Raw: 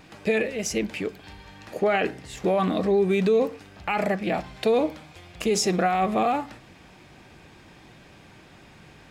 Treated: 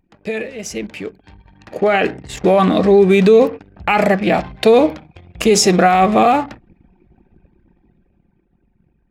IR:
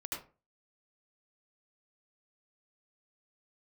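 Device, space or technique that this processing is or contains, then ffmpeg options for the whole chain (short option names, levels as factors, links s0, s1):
voice memo with heavy noise removal: -af "anlmdn=0.251,dynaudnorm=f=330:g=11:m=4.22"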